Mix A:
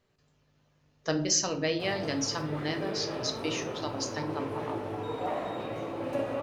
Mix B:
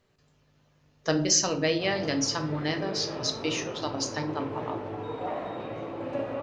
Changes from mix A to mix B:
speech +3.5 dB
background: add high-frequency loss of the air 120 metres

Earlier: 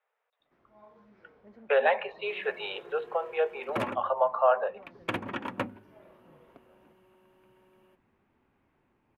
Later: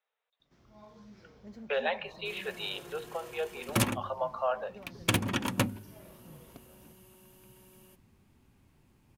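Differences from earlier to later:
speech −8.0 dB
master: remove three-way crossover with the lows and the highs turned down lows −13 dB, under 280 Hz, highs −24 dB, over 2,500 Hz

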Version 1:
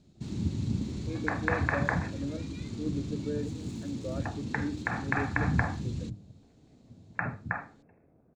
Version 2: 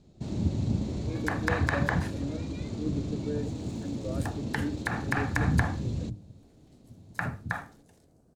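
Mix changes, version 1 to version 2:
first sound: add parametric band 620 Hz +14 dB 0.98 octaves
second sound: remove linear-phase brick-wall band-pass 160–2,700 Hz
master: add low-shelf EQ 76 Hz +7.5 dB

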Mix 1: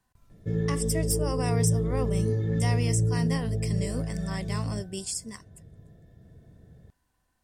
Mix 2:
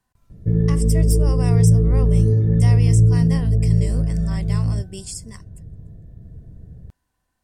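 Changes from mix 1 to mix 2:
background: add spectral tilt −4 dB per octave
reverb: off

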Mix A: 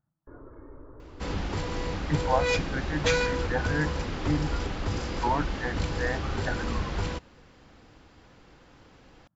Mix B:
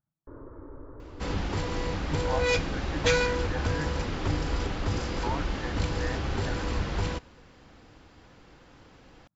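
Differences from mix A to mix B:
speech −7.5 dB
reverb: on, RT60 1.0 s

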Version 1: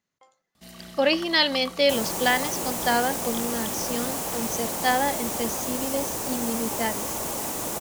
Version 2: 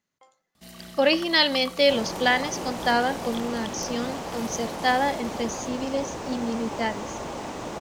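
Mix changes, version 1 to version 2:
speech: send +7.0 dB
second sound: add high-frequency loss of the air 160 metres

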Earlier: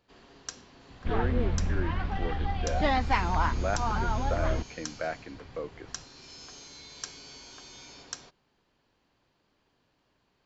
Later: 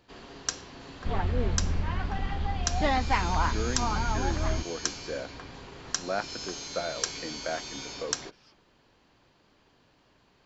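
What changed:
speech: entry +2.45 s
first sound +8.5 dB

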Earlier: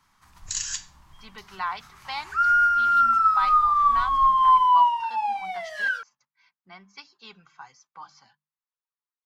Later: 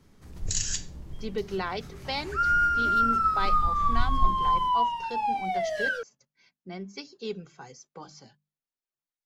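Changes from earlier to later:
speech: remove high-frequency loss of the air 110 metres
master: add low shelf with overshoot 680 Hz +13.5 dB, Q 3

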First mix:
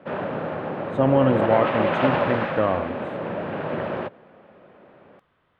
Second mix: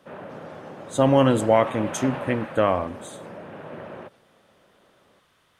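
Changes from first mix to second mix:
speech: remove high-frequency loss of the air 500 metres
background −10.5 dB

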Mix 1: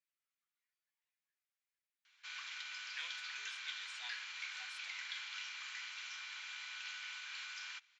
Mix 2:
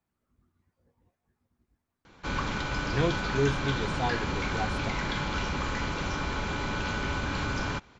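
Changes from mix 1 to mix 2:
background +3.0 dB
master: remove four-pole ladder high-pass 1,700 Hz, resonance 25%

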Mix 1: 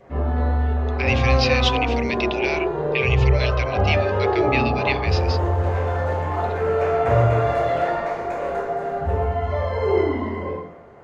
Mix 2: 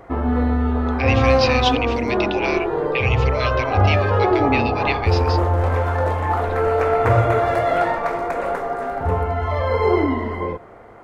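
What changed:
background +10.0 dB
reverb: off

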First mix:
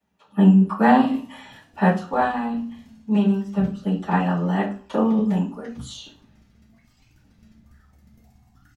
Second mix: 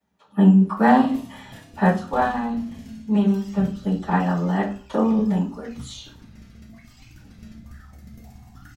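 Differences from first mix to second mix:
speech: add parametric band 2,700 Hz −6.5 dB 0.21 octaves
background +10.5 dB

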